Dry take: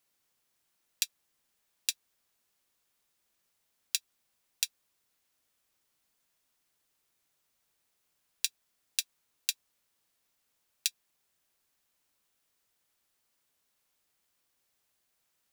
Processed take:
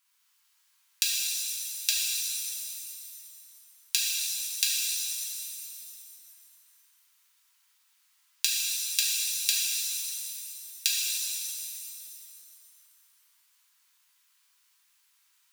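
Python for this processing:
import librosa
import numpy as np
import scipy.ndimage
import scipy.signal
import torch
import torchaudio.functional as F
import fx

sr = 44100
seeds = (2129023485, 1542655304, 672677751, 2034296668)

y = scipy.signal.sosfilt(scipy.signal.cheby1(6, 1.0, 910.0, 'highpass', fs=sr, output='sos'), x)
y = fx.rev_shimmer(y, sr, seeds[0], rt60_s=2.3, semitones=7, shimmer_db=-2, drr_db=-4.5)
y = y * 10.0 ** (3.5 / 20.0)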